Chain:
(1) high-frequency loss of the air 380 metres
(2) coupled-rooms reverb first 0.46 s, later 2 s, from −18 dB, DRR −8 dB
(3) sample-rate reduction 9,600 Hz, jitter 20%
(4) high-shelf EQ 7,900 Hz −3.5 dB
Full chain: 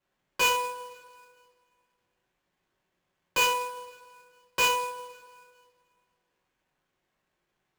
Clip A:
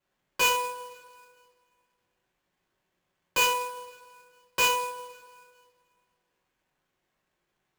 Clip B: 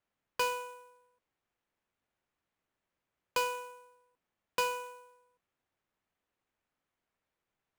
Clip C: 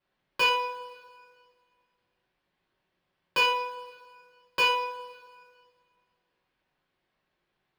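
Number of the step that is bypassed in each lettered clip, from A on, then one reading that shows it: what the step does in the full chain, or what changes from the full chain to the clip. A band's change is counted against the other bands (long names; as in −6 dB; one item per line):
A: 4, 8 kHz band +1.5 dB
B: 2, change in momentary loudness spread −4 LU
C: 3, 8 kHz band −13.0 dB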